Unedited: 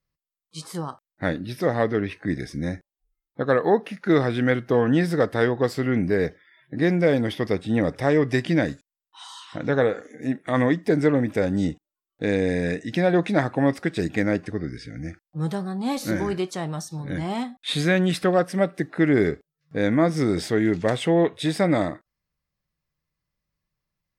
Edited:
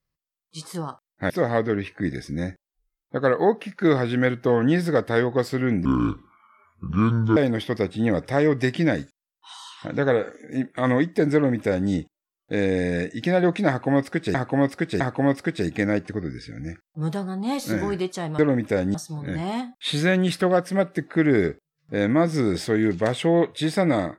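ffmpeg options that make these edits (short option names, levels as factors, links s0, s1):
-filter_complex "[0:a]asplit=8[s0][s1][s2][s3][s4][s5][s6][s7];[s0]atrim=end=1.302[s8];[s1]atrim=start=1.548:end=6.104[s9];[s2]atrim=start=6.1:end=7.07,asetpts=PTS-STARTPTS,asetrate=28224,aresample=44100,atrim=end_sample=66839,asetpts=PTS-STARTPTS[s10];[s3]atrim=start=7.066:end=14.052[s11];[s4]atrim=start=13.388:end=14.052[s12];[s5]atrim=start=13.388:end=16.772[s13];[s6]atrim=start=11.038:end=11.602[s14];[s7]atrim=start=16.768[s15];[s8][s9]acrossfade=d=0.004:c1=hsin:c2=hsin[s16];[s16][s10]acrossfade=d=0.004:c1=hsin:c2=hsin[s17];[s17][s11]acrossfade=d=0.004:c1=hsin:c2=hsin[s18];[s18][s12]acrossfade=d=0.004:c1=hsin:c2=hsin[s19];[s19][s13]acrossfade=d=0.004:c1=hsin:c2=hsin[s20];[s20][s14]acrossfade=d=0.004:c1=hsin:c2=hsin[s21];[s21][s15]acrossfade=d=0.004:c1=hsin:c2=hsin"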